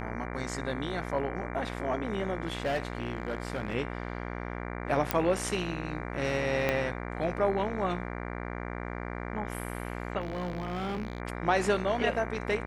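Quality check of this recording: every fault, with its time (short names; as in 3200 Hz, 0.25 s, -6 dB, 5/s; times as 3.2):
buzz 60 Hz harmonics 39 -37 dBFS
2.48–3.74 clipped -25 dBFS
5.11 pop -9 dBFS
6.69 pop -14 dBFS
10.21–11.2 clipped -29.5 dBFS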